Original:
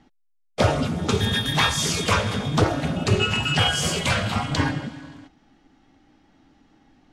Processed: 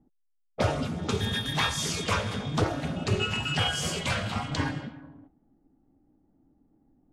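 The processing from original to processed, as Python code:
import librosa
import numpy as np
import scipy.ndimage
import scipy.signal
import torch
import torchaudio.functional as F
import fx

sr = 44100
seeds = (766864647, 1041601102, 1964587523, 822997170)

y = fx.env_lowpass(x, sr, base_hz=460.0, full_db=-20.0)
y = y * librosa.db_to_amplitude(-6.5)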